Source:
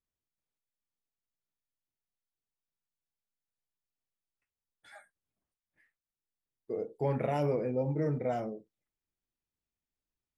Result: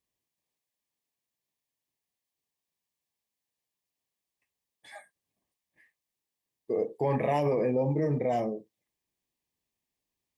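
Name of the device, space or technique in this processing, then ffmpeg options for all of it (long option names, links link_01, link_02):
PA system with an anti-feedback notch: -filter_complex "[0:a]highpass=frequency=130:poles=1,asuperstop=centerf=1400:order=4:qfactor=3.5,alimiter=level_in=3dB:limit=-24dB:level=0:latency=1:release=27,volume=-3dB,asettb=1/sr,asplit=3[link_01][link_02][link_03];[link_01]atrim=end=6.754[link_04];[link_02]atrim=start=6.75:end=7.85,asetpts=PTS-STARTPTS,afade=type=in:duration=0.004:curve=qsin,afade=type=out:start_time=1.096:duration=0.004:curve=qsin,equalizer=frequency=1300:width=1:gain=5[link_05];[link_03]atrim=start=7.846[link_06];[link_04][link_05]acrossfade=duration=0.004:curve1=hsin:curve2=qsin[link_07];[link_07][link_06]acrossfade=duration=0.004:curve1=qsin:curve2=hsin,volume=7dB"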